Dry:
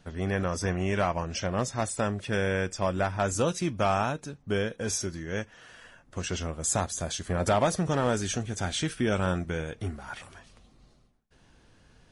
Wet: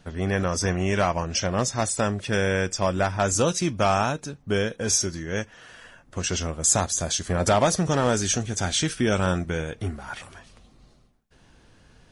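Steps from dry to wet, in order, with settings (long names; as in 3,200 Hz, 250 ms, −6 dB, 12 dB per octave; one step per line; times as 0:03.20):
dynamic equaliser 5,900 Hz, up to +6 dB, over −49 dBFS, Q 1.1
level +4 dB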